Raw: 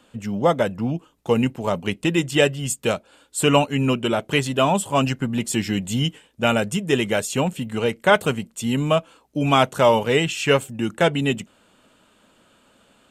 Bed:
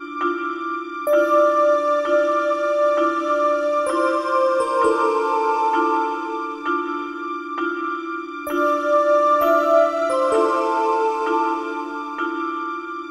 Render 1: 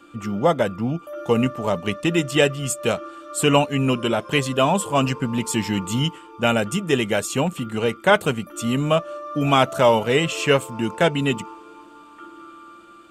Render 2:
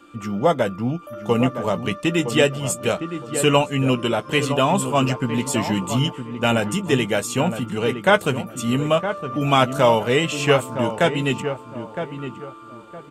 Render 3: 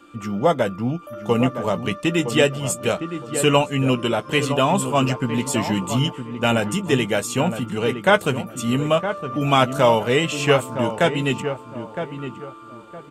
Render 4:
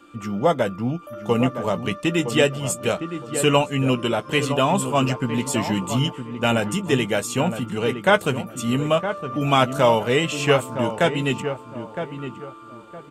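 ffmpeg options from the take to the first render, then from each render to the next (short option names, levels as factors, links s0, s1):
-filter_complex "[1:a]volume=0.133[s0];[0:a][s0]amix=inputs=2:normalize=0"
-filter_complex "[0:a]asplit=2[s0][s1];[s1]adelay=16,volume=0.266[s2];[s0][s2]amix=inputs=2:normalize=0,asplit=2[s3][s4];[s4]adelay=963,lowpass=f=1400:p=1,volume=0.376,asplit=2[s5][s6];[s6]adelay=963,lowpass=f=1400:p=1,volume=0.29,asplit=2[s7][s8];[s8]adelay=963,lowpass=f=1400:p=1,volume=0.29[s9];[s3][s5][s7][s9]amix=inputs=4:normalize=0"
-af anull
-af "volume=0.891"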